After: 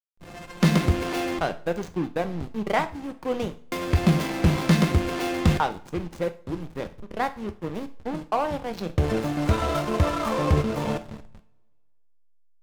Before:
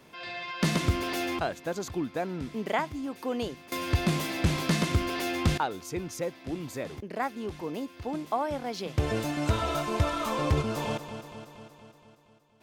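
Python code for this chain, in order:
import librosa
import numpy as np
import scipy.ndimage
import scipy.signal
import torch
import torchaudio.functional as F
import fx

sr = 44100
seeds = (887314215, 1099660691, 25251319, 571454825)

y = fx.backlash(x, sr, play_db=-28.5)
y = fx.rev_double_slope(y, sr, seeds[0], early_s=0.38, late_s=1.7, knee_db=-27, drr_db=8.5)
y = y * 10.0 ** (5.5 / 20.0)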